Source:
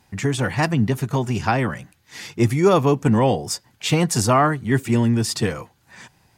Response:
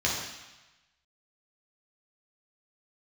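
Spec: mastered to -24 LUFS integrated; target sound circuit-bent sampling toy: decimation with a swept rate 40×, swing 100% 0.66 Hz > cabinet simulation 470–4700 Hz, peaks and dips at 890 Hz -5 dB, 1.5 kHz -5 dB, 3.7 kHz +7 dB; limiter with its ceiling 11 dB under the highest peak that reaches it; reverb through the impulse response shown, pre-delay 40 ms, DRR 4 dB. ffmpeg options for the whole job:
-filter_complex "[0:a]alimiter=limit=0.168:level=0:latency=1,asplit=2[s0][s1];[1:a]atrim=start_sample=2205,adelay=40[s2];[s1][s2]afir=irnorm=-1:irlink=0,volume=0.178[s3];[s0][s3]amix=inputs=2:normalize=0,acrusher=samples=40:mix=1:aa=0.000001:lfo=1:lforange=40:lforate=0.66,highpass=470,equalizer=f=890:t=q:w=4:g=-5,equalizer=f=1500:t=q:w=4:g=-5,equalizer=f=3700:t=q:w=4:g=7,lowpass=f=4700:w=0.5412,lowpass=f=4700:w=1.3066,volume=2"

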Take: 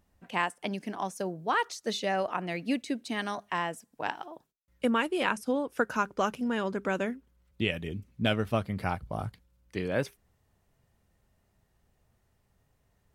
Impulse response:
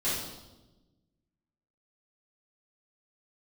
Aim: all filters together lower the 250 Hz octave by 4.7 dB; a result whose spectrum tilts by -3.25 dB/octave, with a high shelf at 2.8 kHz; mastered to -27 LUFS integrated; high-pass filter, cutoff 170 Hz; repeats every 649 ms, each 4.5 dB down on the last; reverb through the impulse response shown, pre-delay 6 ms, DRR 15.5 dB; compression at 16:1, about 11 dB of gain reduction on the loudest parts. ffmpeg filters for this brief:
-filter_complex "[0:a]highpass=170,equalizer=f=250:t=o:g=-4.5,highshelf=f=2800:g=7,acompressor=threshold=0.0251:ratio=16,aecho=1:1:649|1298|1947|2596|3245|3894|4543|5192|5841:0.596|0.357|0.214|0.129|0.0772|0.0463|0.0278|0.0167|0.01,asplit=2[s0][s1];[1:a]atrim=start_sample=2205,adelay=6[s2];[s1][s2]afir=irnorm=-1:irlink=0,volume=0.0631[s3];[s0][s3]amix=inputs=2:normalize=0,volume=3.16"

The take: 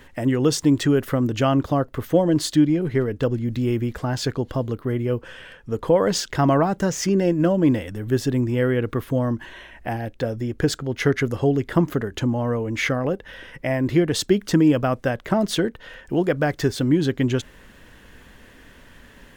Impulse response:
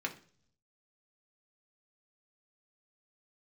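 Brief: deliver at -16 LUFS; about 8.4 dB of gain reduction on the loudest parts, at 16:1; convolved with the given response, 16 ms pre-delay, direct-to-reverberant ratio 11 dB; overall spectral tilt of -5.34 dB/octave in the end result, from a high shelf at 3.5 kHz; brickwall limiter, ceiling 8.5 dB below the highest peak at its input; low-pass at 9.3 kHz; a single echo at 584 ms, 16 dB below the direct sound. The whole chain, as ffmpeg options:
-filter_complex "[0:a]lowpass=9300,highshelf=f=3500:g=5,acompressor=threshold=0.1:ratio=16,alimiter=limit=0.112:level=0:latency=1,aecho=1:1:584:0.158,asplit=2[s0][s1];[1:a]atrim=start_sample=2205,adelay=16[s2];[s1][s2]afir=irnorm=-1:irlink=0,volume=0.188[s3];[s0][s3]amix=inputs=2:normalize=0,volume=3.98"

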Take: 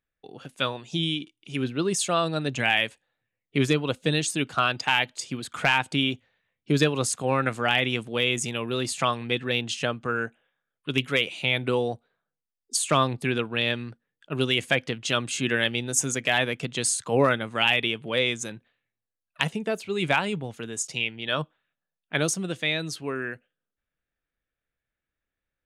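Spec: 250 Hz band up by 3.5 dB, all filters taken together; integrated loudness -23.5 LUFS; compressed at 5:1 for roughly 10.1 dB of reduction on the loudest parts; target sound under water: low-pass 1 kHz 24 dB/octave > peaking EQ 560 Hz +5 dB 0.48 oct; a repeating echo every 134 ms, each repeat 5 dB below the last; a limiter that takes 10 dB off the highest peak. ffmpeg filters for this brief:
-af "equalizer=f=250:t=o:g=4,acompressor=threshold=0.0501:ratio=5,alimiter=limit=0.1:level=0:latency=1,lowpass=f=1000:w=0.5412,lowpass=f=1000:w=1.3066,equalizer=f=560:t=o:w=0.48:g=5,aecho=1:1:134|268|402|536|670|804|938:0.562|0.315|0.176|0.0988|0.0553|0.031|0.0173,volume=3.16"

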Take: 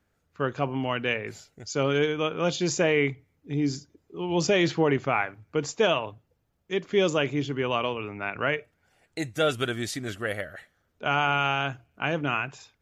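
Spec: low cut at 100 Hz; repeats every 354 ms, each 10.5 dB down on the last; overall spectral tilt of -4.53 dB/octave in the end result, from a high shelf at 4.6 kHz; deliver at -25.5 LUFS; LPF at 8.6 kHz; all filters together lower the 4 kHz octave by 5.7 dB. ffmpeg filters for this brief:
-af "highpass=100,lowpass=8600,equalizer=f=4000:t=o:g=-5,highshelf=f=4600:g=-7,aecho=1:1:354|708|1062:0.299|0.0896|0.0269,volume=1.33"

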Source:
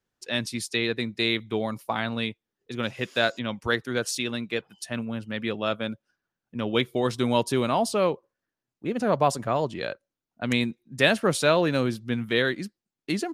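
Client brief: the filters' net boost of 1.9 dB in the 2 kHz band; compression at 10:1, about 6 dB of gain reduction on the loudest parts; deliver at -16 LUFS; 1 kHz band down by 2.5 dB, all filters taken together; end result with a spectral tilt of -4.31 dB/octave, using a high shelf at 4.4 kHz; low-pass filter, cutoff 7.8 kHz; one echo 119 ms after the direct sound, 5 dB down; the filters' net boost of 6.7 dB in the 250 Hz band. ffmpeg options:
-af "lowpass=7800,equalizer=f=250:t=o:g=8,equalizer=f=1000:t=o:g=-5,equalizer=f=2000:t=o:g=4.5,highshelf=f=4400:g=-3,acompressor=threshold=0.1:ratio=10,aecho=1:1:119:0.562,volume=3.16"

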